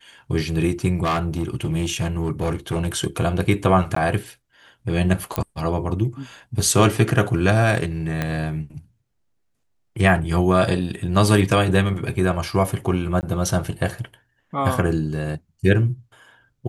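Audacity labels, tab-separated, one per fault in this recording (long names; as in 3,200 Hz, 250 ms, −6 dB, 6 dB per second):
1.030000	2.880000	clipping −17.5 dBFS
3.950000	3.960000	drop-out 14 ms
5.360000	5.360000	click −7 dBFS
8.220000	8.220000	click −10 dBFS
13.210000	13.230000	drop-out 19 ms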